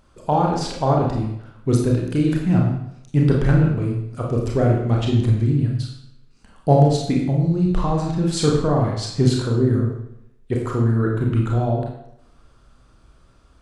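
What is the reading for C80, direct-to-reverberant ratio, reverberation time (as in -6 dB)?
5.5 dB, -1.5 dB, 0.80 s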